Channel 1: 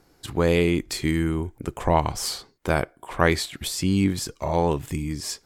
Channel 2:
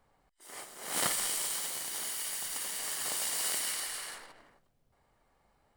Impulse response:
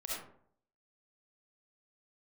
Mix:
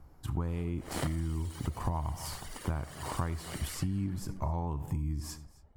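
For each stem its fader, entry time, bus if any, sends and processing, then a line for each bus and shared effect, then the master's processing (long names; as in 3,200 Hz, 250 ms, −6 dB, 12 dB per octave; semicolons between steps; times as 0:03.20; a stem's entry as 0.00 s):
−6.5 dB, 0.00 s, send −15 dB, echo send −22 dB, octave-band graphic EQ 125/250/500/1,000/2,000/4,000/8,000 Hz +7/+3/−8/+7/−6/−9/−5 dB
−0.5 dB, 0.00 s, send −10 dB, no echo send, reverb reduction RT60 1.8 s; spectral tilt −3.5 dB per octave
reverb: on, RT60 0.60 s, pre-delay 25 ms
echo: single-tap delay 265 ms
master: parametric band 73 Hz +12.5 dB 0.64 octaves; downward compressor 12 to 1, threshold −29 dBFS, peak gain reduction 14.5 dB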